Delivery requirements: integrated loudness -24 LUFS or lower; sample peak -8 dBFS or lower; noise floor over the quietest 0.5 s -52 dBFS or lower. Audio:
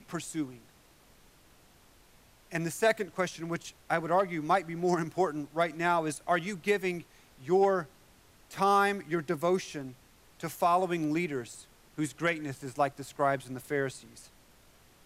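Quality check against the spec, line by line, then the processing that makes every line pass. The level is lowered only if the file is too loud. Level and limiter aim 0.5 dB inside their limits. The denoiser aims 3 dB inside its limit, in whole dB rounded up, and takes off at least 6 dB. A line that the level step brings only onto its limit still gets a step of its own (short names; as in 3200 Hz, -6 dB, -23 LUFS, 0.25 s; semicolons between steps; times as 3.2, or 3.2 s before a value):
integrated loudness -30.5 LUFS: OK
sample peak -12.5 dBFS: OK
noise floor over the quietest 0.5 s -60 dBFS: OK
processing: none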